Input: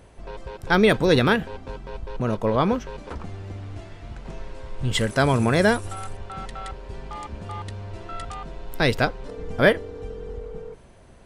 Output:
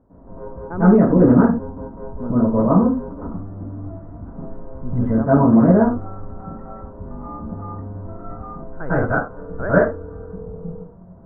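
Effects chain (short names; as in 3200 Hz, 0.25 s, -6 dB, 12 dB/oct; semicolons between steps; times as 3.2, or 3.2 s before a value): steep low-pass 1300 Hz 36 dB/oct; bell 250 Hz +12.5 dB 0.45 oct, from 8.63 s 1500 Hz, from 10.23 s 180 Hz; reverb, pre-delay 96 ms, DRR -12.5 dB; gain -11 dB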